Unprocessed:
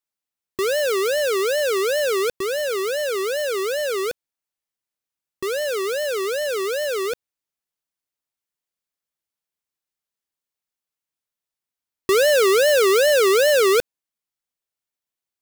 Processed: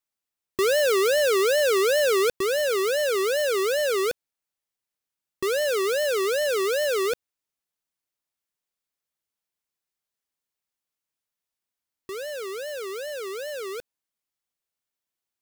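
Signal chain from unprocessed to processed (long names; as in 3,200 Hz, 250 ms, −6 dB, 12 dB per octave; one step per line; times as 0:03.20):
wave folding −20.5 dBFS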